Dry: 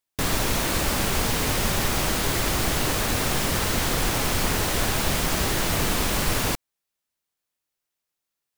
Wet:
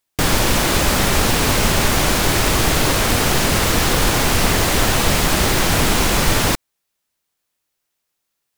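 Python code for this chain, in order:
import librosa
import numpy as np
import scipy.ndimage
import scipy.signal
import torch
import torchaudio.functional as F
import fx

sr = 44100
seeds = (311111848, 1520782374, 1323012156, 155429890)

y = fx.doppler_dist(x, sr, depth_ms=0.66)
y = F.gain(torch.from_numpy(y), 8.0).numpy()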